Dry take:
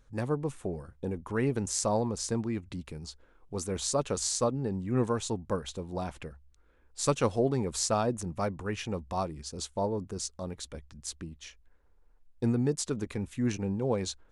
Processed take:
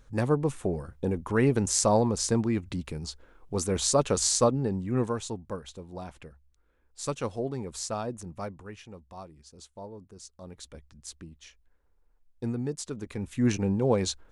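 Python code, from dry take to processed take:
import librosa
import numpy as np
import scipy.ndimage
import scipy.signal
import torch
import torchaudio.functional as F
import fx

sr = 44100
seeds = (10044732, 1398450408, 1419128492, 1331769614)

y = fx.gain(x, sr, db=fx.line((4.46, 5.5), (5.57, -5.0), (8.44, -5.0), (8.86, -12.0), (10.19, -12.0), (10.63, -4.0), (13.0, -4.0), (13.45, 5.0)))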